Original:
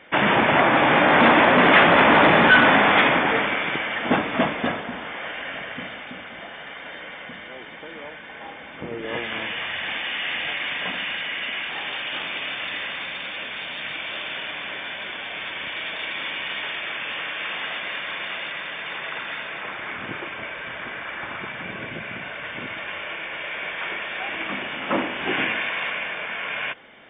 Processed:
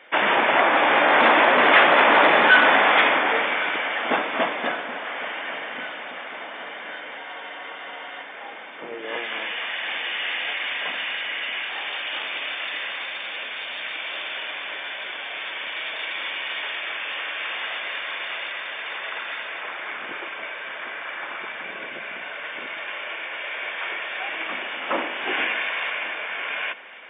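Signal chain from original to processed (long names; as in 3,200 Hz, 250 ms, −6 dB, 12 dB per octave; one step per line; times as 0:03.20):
high-pass filter 410 Hz 12 dB per octave
delay with a low-pass on its return 1,104 ms, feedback 69%, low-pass 3,500 Hz, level −18 dB
frozen spectrum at 0:07.20, 1.04 s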